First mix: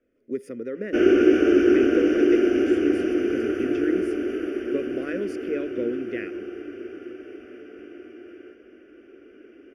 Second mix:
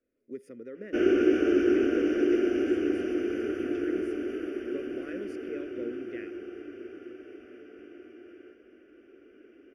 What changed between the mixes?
speech -10.5 dB; background -6.0 dB

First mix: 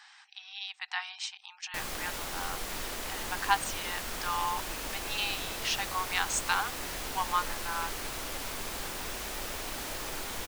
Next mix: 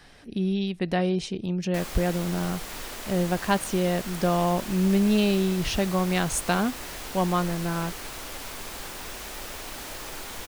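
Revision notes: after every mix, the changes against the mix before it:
speech: remove brick-wall FIR band-pass 750–8700 Hz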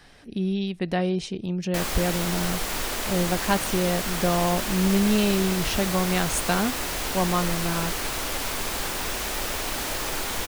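background +8.5 dB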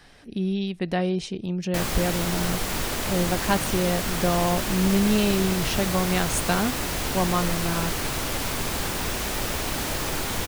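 background: add bell 120 Hz +9 dB 2.3 oct

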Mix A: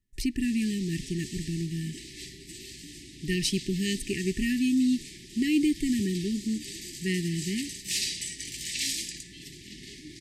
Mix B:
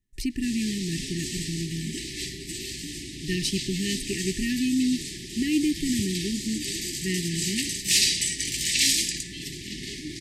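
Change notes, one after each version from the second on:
background +9.0 dB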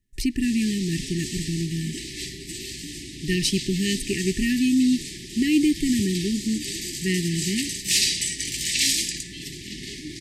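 speech +4.5 dB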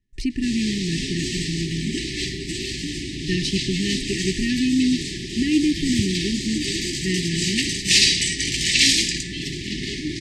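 background +9.0 dB; master: add air absorption 82 m

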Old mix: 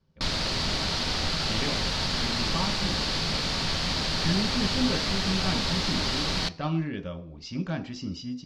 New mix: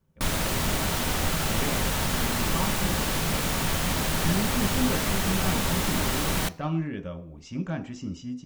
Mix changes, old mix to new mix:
background +3.5 dB; master: remove synth low-pass 4600 Hz, resonance Q 4.5

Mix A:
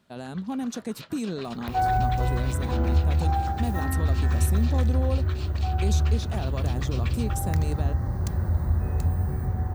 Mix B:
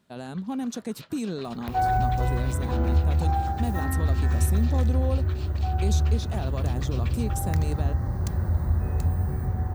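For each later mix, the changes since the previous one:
first sound -4.0 dB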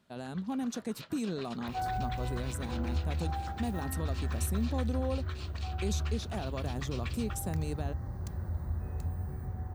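speech -4.0 dB; second sound -11.0 dB

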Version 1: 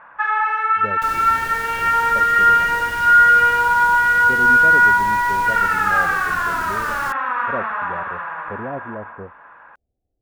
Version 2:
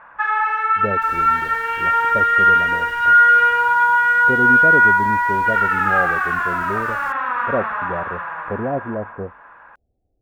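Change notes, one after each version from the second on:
speech +6.5 dB; second sound -11.0 dB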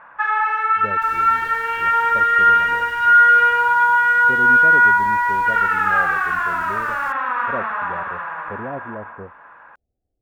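speech -7.5 dB

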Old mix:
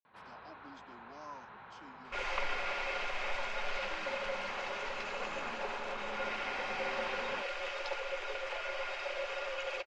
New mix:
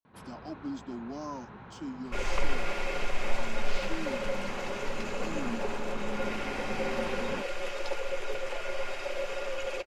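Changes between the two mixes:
speech +6.0 dB; master: remove three-band isolator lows -15 dB, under 570 Hz, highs -24 dB, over 5900 Hz

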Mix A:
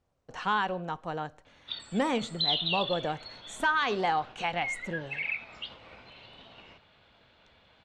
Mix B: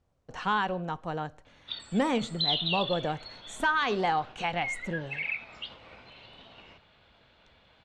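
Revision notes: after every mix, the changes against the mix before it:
speech: add low shelf 210 Hz +5.5 dB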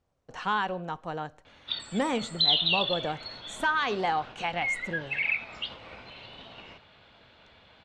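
speech: add low shelf 210 Hz -5.5 dB; background +5.0 dB

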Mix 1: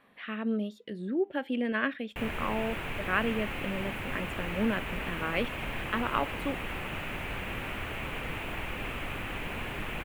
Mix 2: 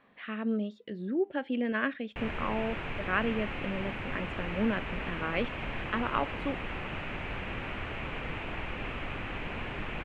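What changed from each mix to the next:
master: add air absorption 140 m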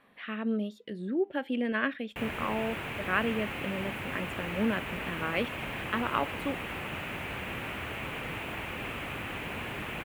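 background: add HPF 73 Hz; master: remove air absorption 140 m

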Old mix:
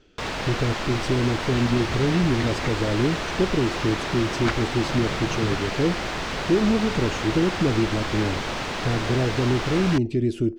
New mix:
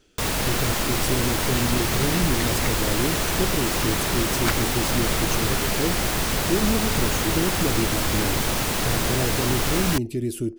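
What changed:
speech -4.0 dB; first sound: add low shelf 280 Hz +8.5 dB; master: remove air absorption 150 m

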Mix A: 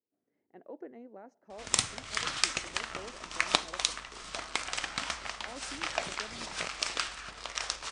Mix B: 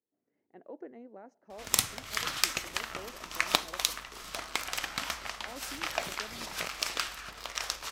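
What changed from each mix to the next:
master: remove brick-wall FIR low-pass 9900 Hz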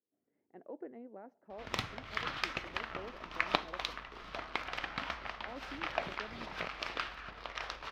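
master: add air absorption 310 m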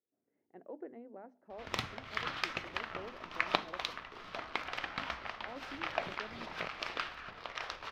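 master: add notches 50/100/150/200/250/300 Hz

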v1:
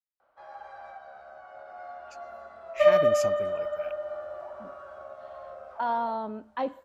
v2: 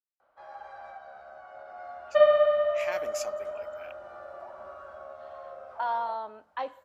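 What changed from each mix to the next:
speech: add HPF 670 Hz 12 dB/oct; second sound: entry -0.65 s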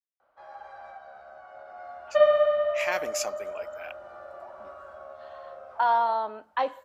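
speech +7.0 dB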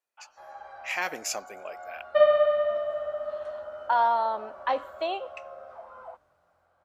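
speech: entry -1.90 s

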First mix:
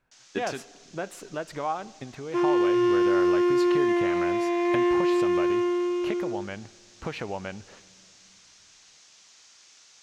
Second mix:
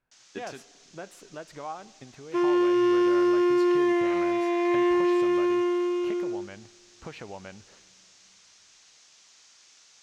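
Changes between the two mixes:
speech -7.5 dB; first sound: send -6.5 dB

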